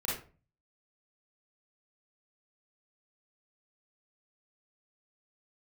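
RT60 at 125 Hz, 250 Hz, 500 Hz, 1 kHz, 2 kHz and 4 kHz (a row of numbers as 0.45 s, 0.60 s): 0.65 s, 0.50 s, 0.40 s, 0.35 s, 0.30 s, 0.25 s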